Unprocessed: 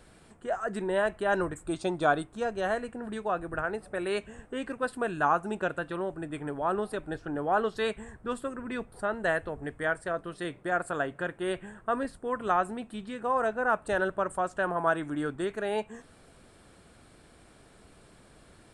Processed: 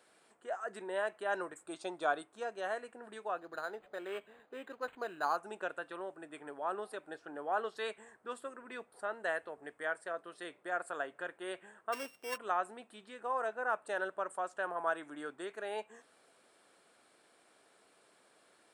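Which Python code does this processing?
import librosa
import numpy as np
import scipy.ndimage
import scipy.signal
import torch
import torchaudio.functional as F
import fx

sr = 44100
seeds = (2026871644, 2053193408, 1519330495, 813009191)

y = fx.sample_sort(x, sr, block=16, at=(11.92, 12.36), fade=0.02)
y = scipy.signal.sosfilt(scipy.signal.butter(2, 440.0, 'highpass', fs=sr, output='sos'), y)
y = fx.resample_linear(y, sr, factor=8, at=(3.38, 5.37))
y = F.gain(torch.from_numpy(y), -7.0).numpy()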